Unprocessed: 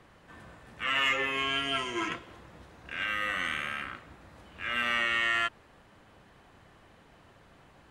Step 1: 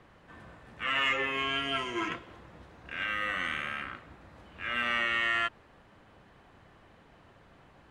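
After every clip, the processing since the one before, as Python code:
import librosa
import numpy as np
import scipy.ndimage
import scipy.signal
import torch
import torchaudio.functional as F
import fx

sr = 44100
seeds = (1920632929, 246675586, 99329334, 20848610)

y = fx.high_shelf(x, sr, hz=5800.0, db=-9.5)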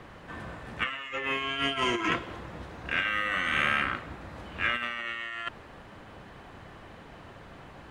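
y = fx.over_compress(x, sr, threshold_db=-35.0, ratio=-0.5)
y = y * 10.0 ** (6.0 / 20.0)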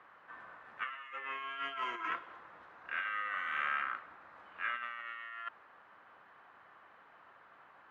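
y = fx.bandpass_q(x, sr, hz=1300.0, q=1.8)
y = y * 10.0 ** (-5.0 / 20.0)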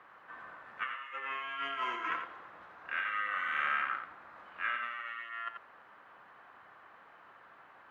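y = x + 10.0 ** (-7.0 / 20.0) * np.pad(x, (int(87 * sr / 1000.0), 0))[:len(x)]
y = y * 10.0 ** (2.0 / 20.0)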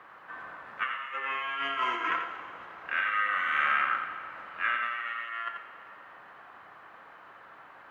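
y = fx.rev_plate(x, sr, seeds[0], rt60_s=2.6, hf_ratio=0.95, predelay_ms=0, drr_db=9.0)
y = y * 10.0 ** (5.5 / 20.0)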